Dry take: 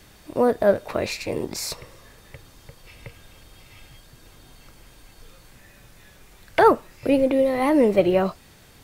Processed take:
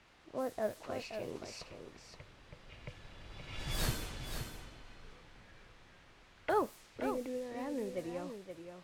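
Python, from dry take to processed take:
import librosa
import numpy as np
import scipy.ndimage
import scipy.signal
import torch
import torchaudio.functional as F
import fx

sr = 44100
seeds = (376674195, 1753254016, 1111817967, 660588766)

p1 = fx.doppler_pass(x, sr, speed_mps=21, closest_m=1.1, pass_at_s=3.84)
p2 = fx.rider(p1, sr, range_db=4, speed_s=2.0)
p3 = fx.quant_dither(p2, sr, seeds[0], bits=12, dither='triangular')
p4 = fx.env_lowpass(p3, sr, base_hz=2300.0, full_db=-48.0)
p5 = p4 + fx.echo_single(p4, sr, ms=524, db=-8.0, dry=0)
y = p5 * 10.0 ** (15.5 / 20.0)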